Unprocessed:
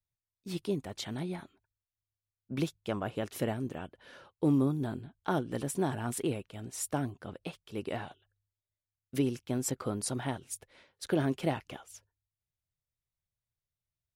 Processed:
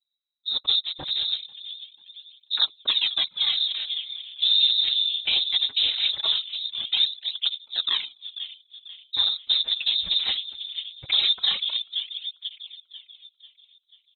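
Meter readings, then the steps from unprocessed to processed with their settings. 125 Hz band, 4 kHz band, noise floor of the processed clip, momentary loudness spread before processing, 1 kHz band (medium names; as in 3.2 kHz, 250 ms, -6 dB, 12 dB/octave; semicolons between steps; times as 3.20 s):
under -20 dB, +29.5 dB, -70 dBFS, 14 LU, -5.0 dB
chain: local Wiener filter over 41 samples; comb 3.9 ms, depth 39%; in parallel at -9 dB: crossover distortion -49.5 dBFS; on the sum: whisper effect; on a send: feedback echo behind a band-pass 491 ms, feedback 44%, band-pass 590 Hz, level -8 dB; on the sum: frequency inversion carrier 3.9 kHz; loudness maximiser +20.5 dB; cancelling through-zero flanger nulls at 0.2 Hz, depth 7.9 ms; trim -8.5 dB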